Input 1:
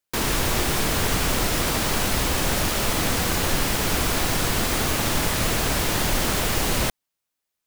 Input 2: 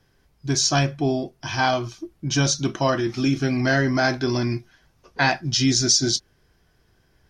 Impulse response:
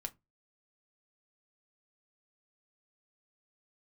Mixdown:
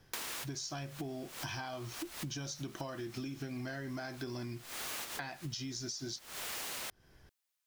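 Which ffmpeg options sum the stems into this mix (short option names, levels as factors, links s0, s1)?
-filter_complex "[0:a]highpass=f=1200:p=1,volume=0.75[s0];[1:a]acompressor=threshold=0.0501:ratio=4,volume=0.944,asplit=2[s1][s2];[s2]apad=whole_len=338133[s3];[s0][s3]sidechaincompress=threshold=0.00158:ratio=3:attack=6.2:release=219[s4];[s4][s1]amix=inputs=2:normalize=0,acompressor=threshold=0.0126:ratio=12"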